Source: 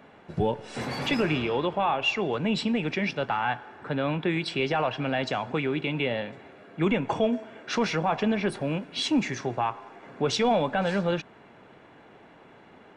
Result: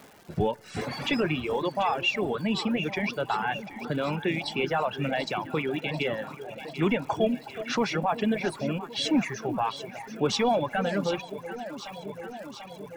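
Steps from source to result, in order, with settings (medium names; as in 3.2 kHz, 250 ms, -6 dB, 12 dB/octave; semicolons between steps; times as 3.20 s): echo whose repeats swap between lows and highs 370 ms, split 850 Hz, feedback 83%, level -9 dB; crackle 460 per s -41 dBFS; reverb removal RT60 1.6 s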